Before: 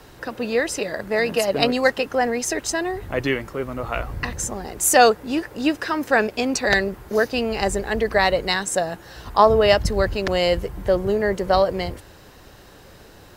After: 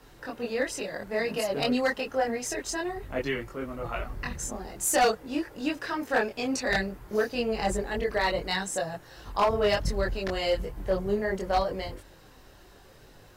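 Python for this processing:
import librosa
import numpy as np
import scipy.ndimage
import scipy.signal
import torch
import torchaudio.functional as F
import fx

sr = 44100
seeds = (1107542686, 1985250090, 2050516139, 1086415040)

y = fx.chorus_voices(x, sr, voices=6, hz=0.54, base_ms=23, depth_ms=4.1, mix_pct=50)
y = np.clip(y, -10.0 ** (-13.0 / 20.0), 10.0 ** (-13.0 / 20.0))
y = F.gain(torch.from_numpy(y), -4.5).numpy()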